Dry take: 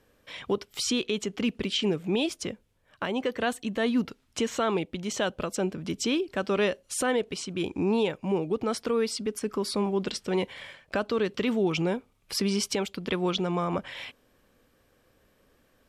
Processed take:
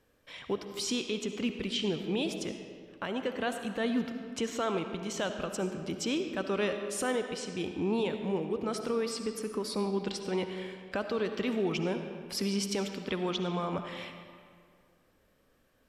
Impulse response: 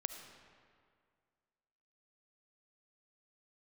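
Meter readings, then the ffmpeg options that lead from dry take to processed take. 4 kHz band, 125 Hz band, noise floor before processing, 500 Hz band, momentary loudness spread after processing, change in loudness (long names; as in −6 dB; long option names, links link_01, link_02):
−4.5 dB, −4.5 dB, −66 dBFS, −4.5 dB, 7 LU, −4.5 dB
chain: -filter_complex "[1:a]atrim=start_sample=2205[link_01];[0:a][link_01]afir=irnorm=-1:irlink=0,volume=-3.5dB"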